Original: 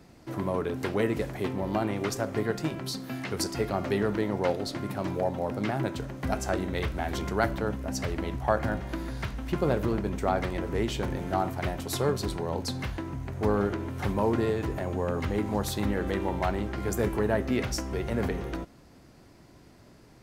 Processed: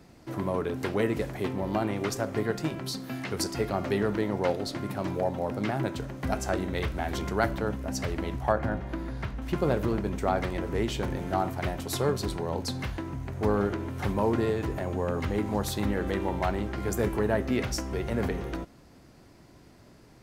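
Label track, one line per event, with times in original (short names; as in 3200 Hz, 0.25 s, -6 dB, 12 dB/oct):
8.520000	9.420000	high shelf 3300 Hz -10.5 dB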